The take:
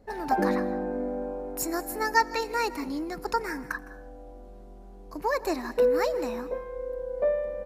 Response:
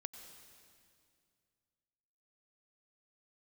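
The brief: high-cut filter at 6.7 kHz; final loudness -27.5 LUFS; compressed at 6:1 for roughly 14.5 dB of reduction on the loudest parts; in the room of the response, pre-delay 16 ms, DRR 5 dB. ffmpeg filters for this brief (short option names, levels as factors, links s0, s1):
-filter_complex "[0:a]lowpass=6700,acompressor=threshold=0.02:ratio=6,asplit=2[s0][s1];[1:a]atrim=start_sample=2205,adelay=16[s2];[s1][s2]afir=irnorm=-1:irlink=0,volume=0.841[s3];[s0][s3]amix=inputs=2:normalize=0,volume=2.99"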